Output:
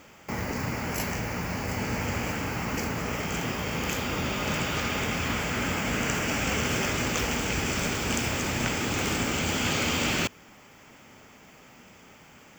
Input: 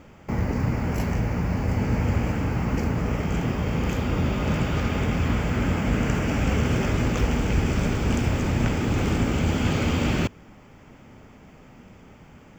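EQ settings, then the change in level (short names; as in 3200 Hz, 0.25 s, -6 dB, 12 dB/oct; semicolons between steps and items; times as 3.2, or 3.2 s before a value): tilt +3 dB/oct; 0.0 dB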